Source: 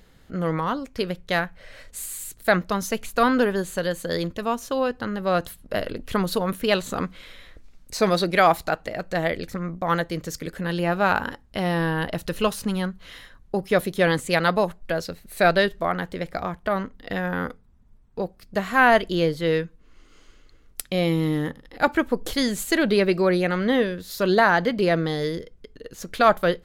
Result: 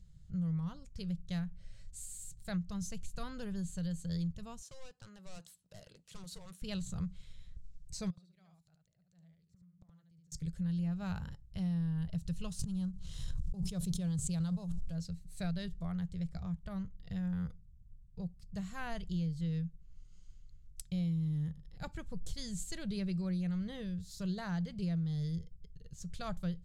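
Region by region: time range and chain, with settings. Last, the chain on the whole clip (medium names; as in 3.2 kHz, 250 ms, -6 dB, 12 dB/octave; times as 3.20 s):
4.62–6.62 s: high-pass 470 Hz + hard clipper -27 dBFS
8.10–10.32 s: high-pass 110 Hz + inverted gate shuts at -26 dBFS, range -31 dB + delay 73 ms -3.5 dB
12.59–14.95 s: companding laws mixed up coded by A + peaking EQ 2 kHz -9 dB 0.72 oct + swell ahead of each attack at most 33 dB/s
whole clip: FFT filter 170 Hz 0 dB, 250 Hz -26 dB, 1.8 kHz -27 dB, 7.8 kHz -9 dB, 13 kHz -26 dB; compression 6:1, threshold -32 dBFS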